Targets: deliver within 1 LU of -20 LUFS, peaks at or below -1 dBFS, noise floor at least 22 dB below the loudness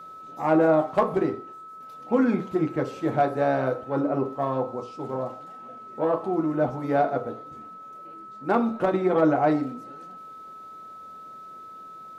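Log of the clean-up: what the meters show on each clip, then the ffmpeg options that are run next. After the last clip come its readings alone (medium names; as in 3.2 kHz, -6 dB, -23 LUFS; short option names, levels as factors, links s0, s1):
steady tone 1.3 kHz; tone level -40 dBFS; loudness -25.0 LUFS; peak level -7.0 dBFS; loudness target -20.0 LUFS
-> -af "bandreject=f=1300:w=30"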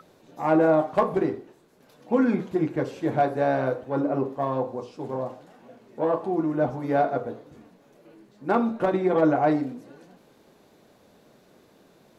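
steady tone not found; loudness -25.0 LUFS; peak level -7.0 dBFS; loudness target -20.0 LUFS
-> -af "volume=1.78"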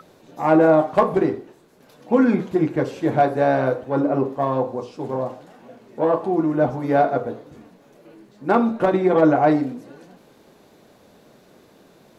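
loudness -20.0 LUFS; peak level -2.0 dBFS; noise floor -53 dBFS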